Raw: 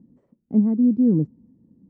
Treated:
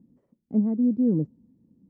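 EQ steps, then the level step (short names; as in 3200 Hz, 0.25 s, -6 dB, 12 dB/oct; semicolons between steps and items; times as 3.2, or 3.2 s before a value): dynamic EQ 580 Hz, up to +6 dB, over -40 dBFS, Q 2; -5.0 dB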